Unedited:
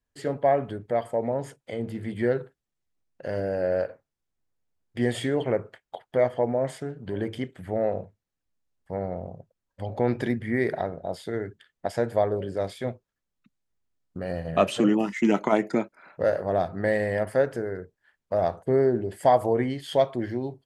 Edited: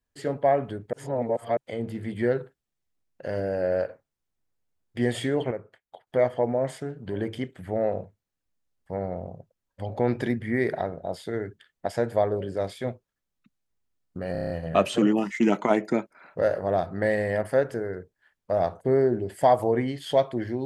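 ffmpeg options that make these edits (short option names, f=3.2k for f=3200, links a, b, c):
-filter_complex "[0:a]asplit=11[a][b][c][d][e][f][g][h][i][j][k];[a]atrim=end=0.932[l];[b]atrim=start=0.928:end=1.572,asetpts=PTS-STARTPTS,areverse[m];[c]atrim=start=1.568:end=5.512[n];[d]atrim=start=5.508:end=6.072,asetpts=PTS-STARTPTS,volume=-8.5dB[o];[e]atrim=start=6.068:end=14.352[p];[f]atrim=start=14.318:end=14.352[q];[g]atrim=start=14.318:end=14.352[r];[h]atrim=start=14.318:end=14.352[s];[i]atrim=start=14.318:end=14.352[t];[j]atrim=start=14.318:end=14.352[u];[k]atrim=start=14.318[v];[l][m]acrossfade=d=0.004:c1=hsin:c2=hsin[w];[w][n]acrossfade=d=0.004:c1=hsin:c2=hsin[x];[x][o]acrossfade=d=0.004:c1=hsin:c2=hsin[y];[y][p]acrossfade=d=0.004:c1=hsin:c2=hsin[z];[z][q]acrossfade=d=0.004:c1=hsin:c2=hsin[aa];[aa][r]acrossfade=d=0.004:c1=hsin:c2=hsin[ab];[ab][s]acrossfade=d=0.004:c1=hsin:c2=hsin[ac];[ac][t]acrossfade=d=0.004:c1=hsin:c2=hsin[ad];[ad][u]acrossfade=d=0.004:c1=hsin:c2=hsin[ae];[ae][v]acrossfade=d=0.004:c1=hsin:c2=hsin"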